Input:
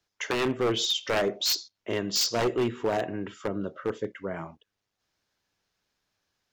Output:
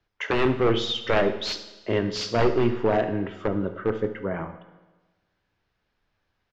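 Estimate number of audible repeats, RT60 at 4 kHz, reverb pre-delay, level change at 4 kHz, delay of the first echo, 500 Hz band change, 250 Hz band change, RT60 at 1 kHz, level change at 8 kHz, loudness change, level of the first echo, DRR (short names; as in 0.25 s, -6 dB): 1, 1.1 s, 9 ms, -2.5 dB, 71 ms, +5.0 dB, +5.5 dB, 1.2 s, -10.5 dB, +3.0 dB, -16.5 dB, 9.0 dB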